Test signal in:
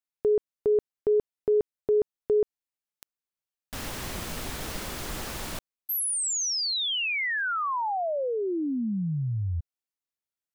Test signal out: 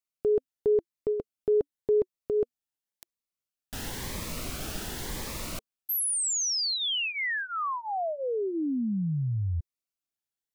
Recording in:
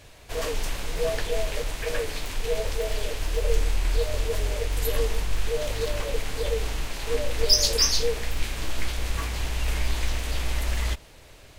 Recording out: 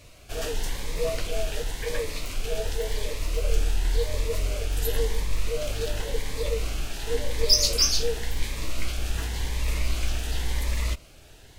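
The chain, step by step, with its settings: cascading phaser rising 0.92 Hz

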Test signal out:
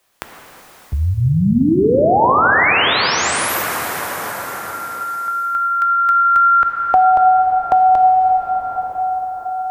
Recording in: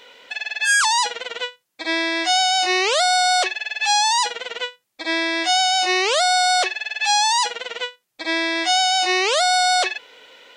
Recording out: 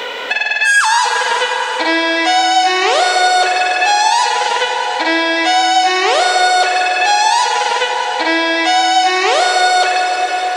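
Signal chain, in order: bell 860 Hz +7 dB 2.8 oct; in parallel at +2 dB: limiter -15 dBFS; on the sum: plate-style reverb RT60 4.1 s, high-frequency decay 0.65×, DRR 1.5 dB; three-band squash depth 70%; gain -4.5 dB

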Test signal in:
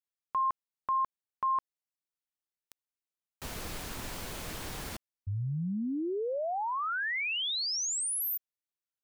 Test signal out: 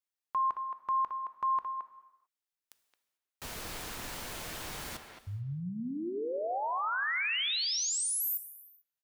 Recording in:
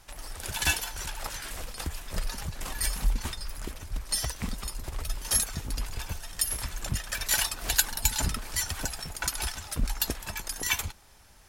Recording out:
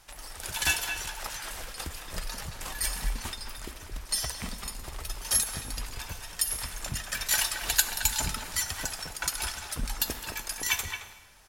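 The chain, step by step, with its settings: low shelf 460 Hz -5.5 dB; speakerphone echo 0.22 s, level -7 dB; non-linear reverb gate 0.47 s falling, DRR 11 dB

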